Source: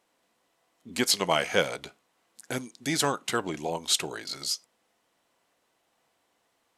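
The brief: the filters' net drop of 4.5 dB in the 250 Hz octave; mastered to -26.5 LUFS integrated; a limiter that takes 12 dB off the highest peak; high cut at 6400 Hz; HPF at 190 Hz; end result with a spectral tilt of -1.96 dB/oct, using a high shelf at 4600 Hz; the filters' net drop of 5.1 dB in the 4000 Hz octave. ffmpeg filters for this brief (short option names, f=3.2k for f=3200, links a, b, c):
-af "highpass=190,lowpass=6.4k,equalizer=f=250:t=o:g=-4.5,equalizer=f=4k:t=o:g=-7.5,highshelf=f=4.6k:g=3.5,volume=8dB,alimiter=limit=-12.5dB:level=0:latency=1"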